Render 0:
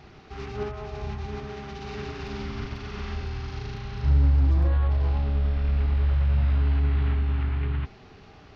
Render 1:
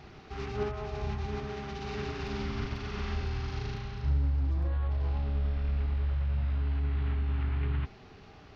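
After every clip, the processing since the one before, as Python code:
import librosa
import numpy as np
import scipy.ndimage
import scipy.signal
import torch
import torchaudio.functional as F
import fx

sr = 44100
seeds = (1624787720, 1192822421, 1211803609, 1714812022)

y = fx.rider(x, sr, range_db=4, speed_s=0.5)
y = F.gain(torch.from_numpy(y), -5.0).numpy()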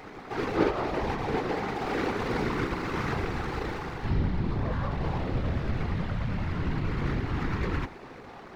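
y = scipy.signal.medfilt(x, 15)
y = fx.graphic_eq_10(y, sr, hz=(125, 250, 500, 1000, 2000, 4000), db=(-11, 9, 4, 7, 9, 8))
y = fx.whisperise(y, sr, seeds[0])
y = F.gain(torch.from_numpy(y), 2.5).numpy()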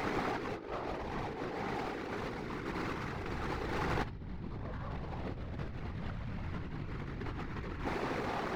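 y = fx.over_compress(x, sr, threshold_db=-39.0, ratio=-1.0)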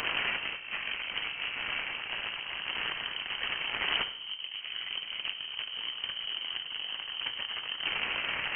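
y = fx.cheby_harmonics(x, sr, harmonics=(6,), levels_db=(-9,), full_scale_db=-19.5)
y = fx.rev_schroeder(y, sr, rt60_s=0.74, comb_ms=26, drr_db=11.0)
y = fx.freq_invert(y, sr, carrier_hz=3100)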